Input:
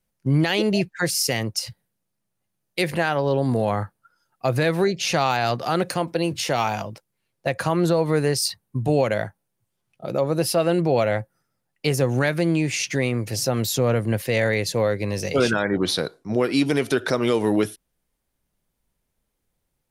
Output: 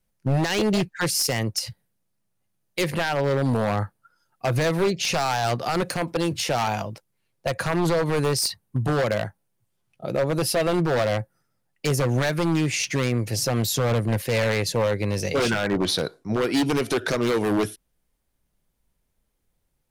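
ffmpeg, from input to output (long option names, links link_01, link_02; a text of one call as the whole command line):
ffmpeg -i in.wav -af "lowshelf=frequency=79:gain=5,aeval=exprs='0.168*(abs(mod(val(0)/0.168+3,4)-2)-1)':channel_layout=same" out.wav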